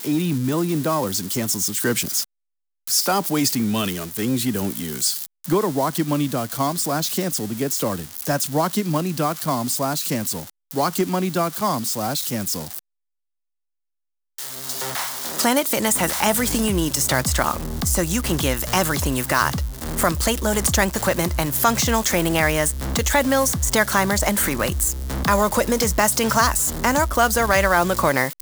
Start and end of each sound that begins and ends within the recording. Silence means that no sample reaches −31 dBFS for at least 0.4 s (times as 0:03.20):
0:02.87–0:12.79